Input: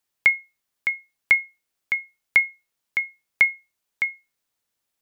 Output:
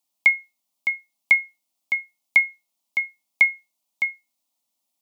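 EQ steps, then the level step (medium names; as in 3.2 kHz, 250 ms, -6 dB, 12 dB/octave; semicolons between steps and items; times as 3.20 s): high-pass 130 Hz; dynamic bell 2.4 kHz, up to +7 dB, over -31 dBFS, Q 0.71; static phaser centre 430 Hz, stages 6; +2.5 dB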